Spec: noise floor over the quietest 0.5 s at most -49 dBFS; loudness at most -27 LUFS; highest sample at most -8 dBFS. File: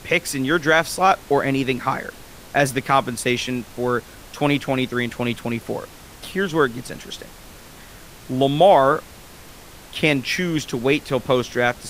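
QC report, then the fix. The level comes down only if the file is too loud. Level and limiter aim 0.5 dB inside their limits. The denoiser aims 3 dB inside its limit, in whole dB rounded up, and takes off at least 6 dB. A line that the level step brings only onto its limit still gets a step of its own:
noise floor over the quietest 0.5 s -42 dBFS: fail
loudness -20.5 LUFS: fail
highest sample -4.0 dBFS: fail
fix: noise reduction 6 dB, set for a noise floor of -42 dBFS; trim -7 dB

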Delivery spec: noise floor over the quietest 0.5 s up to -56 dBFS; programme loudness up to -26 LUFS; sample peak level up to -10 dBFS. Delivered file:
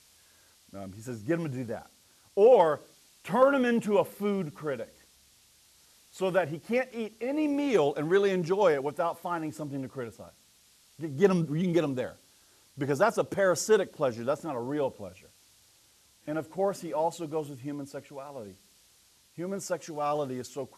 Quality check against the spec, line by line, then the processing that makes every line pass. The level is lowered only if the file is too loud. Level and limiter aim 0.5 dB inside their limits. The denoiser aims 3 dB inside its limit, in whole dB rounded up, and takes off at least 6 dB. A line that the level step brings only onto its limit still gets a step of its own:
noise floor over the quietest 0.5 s -62 dBFS: pass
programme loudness -28.5 LUFS: pass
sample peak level -10.5 dBFS: pass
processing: none needed

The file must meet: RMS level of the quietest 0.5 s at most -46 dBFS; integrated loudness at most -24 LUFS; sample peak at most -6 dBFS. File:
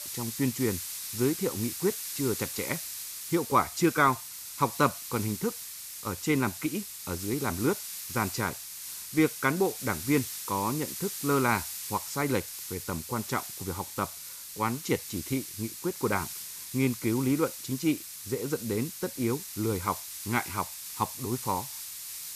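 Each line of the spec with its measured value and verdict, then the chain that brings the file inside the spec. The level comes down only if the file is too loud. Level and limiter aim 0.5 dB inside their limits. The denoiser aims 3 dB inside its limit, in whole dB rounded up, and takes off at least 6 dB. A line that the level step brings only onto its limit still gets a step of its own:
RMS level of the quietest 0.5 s -43 dBFS: fail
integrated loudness -30.5 LUFS: pass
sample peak -10.0 dBFS: pass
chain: noise reduction 6 dB, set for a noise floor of -43 dBFS

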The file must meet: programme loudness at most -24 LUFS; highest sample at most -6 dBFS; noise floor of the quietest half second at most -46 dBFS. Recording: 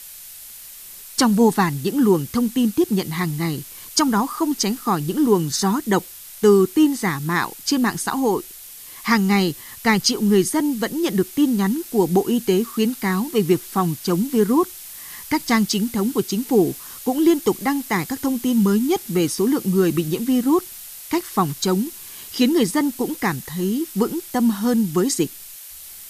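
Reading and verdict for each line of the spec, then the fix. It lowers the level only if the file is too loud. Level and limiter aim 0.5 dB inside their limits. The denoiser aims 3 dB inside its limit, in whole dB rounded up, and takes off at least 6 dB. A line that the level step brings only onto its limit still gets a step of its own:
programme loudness -20.5 LUFS: fail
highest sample -3.5 dBFS: fail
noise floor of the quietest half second -39 dBFS: fail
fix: noise reduction 6 dB, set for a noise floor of -39 dBFS; trim -4 dB

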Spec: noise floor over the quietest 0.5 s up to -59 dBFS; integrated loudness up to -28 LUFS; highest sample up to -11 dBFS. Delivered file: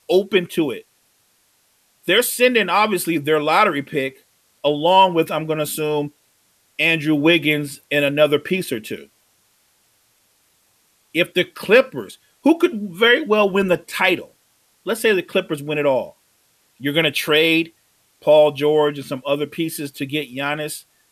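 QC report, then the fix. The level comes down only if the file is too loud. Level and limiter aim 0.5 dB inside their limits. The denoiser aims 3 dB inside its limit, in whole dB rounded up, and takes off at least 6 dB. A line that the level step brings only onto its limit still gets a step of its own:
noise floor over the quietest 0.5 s -61 dBFS: pass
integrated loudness -18.5 LUFS: fail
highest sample -2.5 dBFS: fail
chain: trim -10 dB

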